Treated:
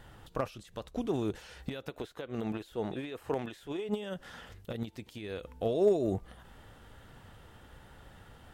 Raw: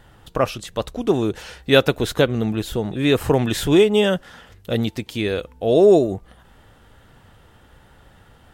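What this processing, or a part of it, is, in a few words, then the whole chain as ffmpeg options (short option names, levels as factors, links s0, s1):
de-esser from a sidechain: -filter_complex "[0:a]asplit=2[s0][s1];[s1]highpass=5300,apad=whole_len=376589[s2];[s0][s2]sidechaincompress=threshold=0.00282:ratio=6:attack=0.54:release=84,asettb=1/sr,asplit=3[s3][s4][s5];[s3]atrim=end=1.904[s6];[s4]atrim=start=1.9:end=3.89,asetpts=PTS-STARTPTS,afade=t=in:d=0.004:c=qsin,afade=t=out:st=1.986:d=0.004:c=qsin,bass=f=250:g=-10,treble=f=4000:g=-5[s7];[s5]atrim=start=3.886[s8];[s6][s7]acrossfade=d=0.004:c1=hsin:c2=qsin[s9];[s9][s8]acrossfade=d=0.004:c1=qsin:c2=hsin,volume=0.668"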